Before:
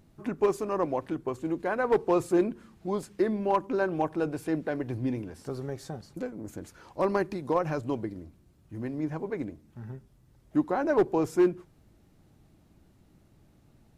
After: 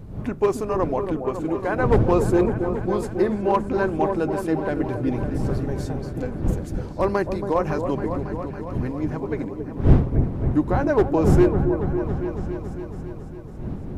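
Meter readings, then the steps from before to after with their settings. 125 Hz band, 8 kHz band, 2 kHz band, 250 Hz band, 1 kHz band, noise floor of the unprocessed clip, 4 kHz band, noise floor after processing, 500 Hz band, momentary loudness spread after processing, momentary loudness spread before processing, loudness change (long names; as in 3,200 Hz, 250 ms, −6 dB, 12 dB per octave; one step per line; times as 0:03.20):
+15.5 dB, +4.5 dB, +5.5 dB, +7.5 dB, +6.0 dB, −62 dBFS, +5.0 dB, −34 dBFS, +6.0 dB, 12 LU, 16 LU, +6.5 dB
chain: wind on the microphone 170 Hz −32 dBFS
echo whose low-pass opens from repeat to repeat 277 ms, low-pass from 750 Hz, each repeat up 1 octave, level −6 dB
level +4.5 dB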